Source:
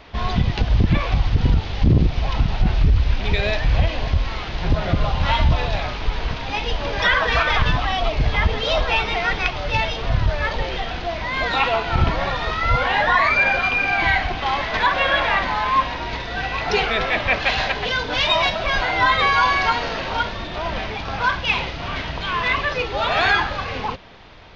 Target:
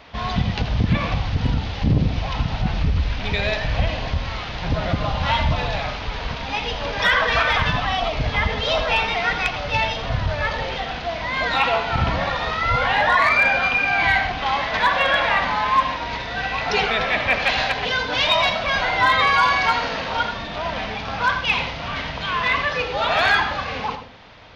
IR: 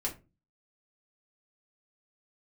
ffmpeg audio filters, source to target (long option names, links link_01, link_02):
-filter_complex "[0:a]highpass=frequency=92:poles=1,equalizer=frequency=360:width_type=o:width=0.3:gain=-9,asplit=2[link_01][link_02];[1:a]atrim=start_sample=2205,adelay=80[link_03];[link_02][link_03]afir=irnorm=-1:irlink=0,volume=-12dB[link_04];[link_01][link_04]amix=inputs=2:normalize=0,asoftclip=type=hard:threshold=-8.5dB"